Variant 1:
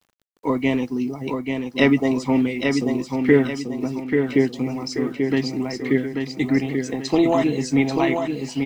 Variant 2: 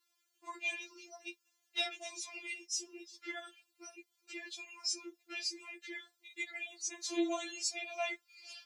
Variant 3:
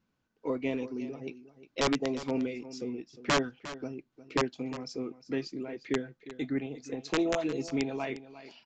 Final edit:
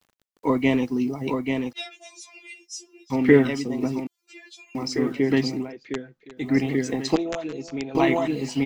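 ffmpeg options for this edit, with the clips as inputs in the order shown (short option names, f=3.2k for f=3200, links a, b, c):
-filter_complex "[1:a]asplit=2[a][b];[2:a]asplit=2[c][d];[0:a]asplit=5[e][f][g][h][i];[e]atrim=end=1.732[j];[a]atrim=start=1.728:end=3.102[k];[f]atrim=start=3.098:end=4.072[l];[b]atrim=start=4.068:end=4.752[m];[g]atrim=start=4.748:end=5.73[n];[c]atrim=start=5.49:end=6.6[o];[h]atrim=start=6.36:end=7.162[p];[d]atrim=start=7.158:end=7.952[q];[i]atrim=start=7.948[r];[j][k]acrossfade=d=0.004:c1=hsin:c2=hsin[s];[s][l]acrossfade=d=0.004:c1=hsin:c2=hsin[t];[t][m]acrossfade=d=0.004:c1=hsin:c2=hsin[u];[u][n]acrossfade=d=0.004:c1=hsin:c2=hsin[v];[v][o]acrossfade=d=0.24:c1=tri:c2=tri[w];[w][p]acrossfade=d=0.24:c1=tri:c2=tri[x];[x][q]acrossfade=d=0.004:c1=hsin:c2=hsin[y];[y][r]acrossfade=d=0.004:c1=hsin:c2=hsin"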